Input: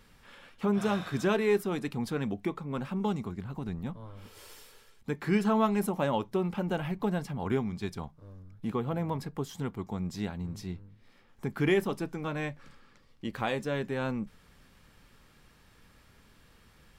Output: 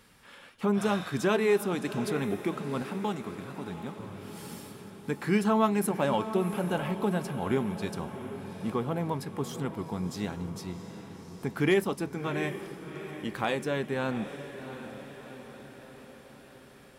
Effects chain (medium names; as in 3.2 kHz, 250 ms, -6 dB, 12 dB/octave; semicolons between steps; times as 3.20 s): high-pass 120 Hz 6 dB/octave; peaking EQ 10 kHz +5.5 dB 0.52 oct; on a send: echo that smears into a reverb 728 ms, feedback 58%, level -11 dB; on the sum: hard clipper -16.5 dBFS, distortion -42 dB; 2.82–4.00 s: bass shelf 190 Hz -8.5 dB; trim +2 dB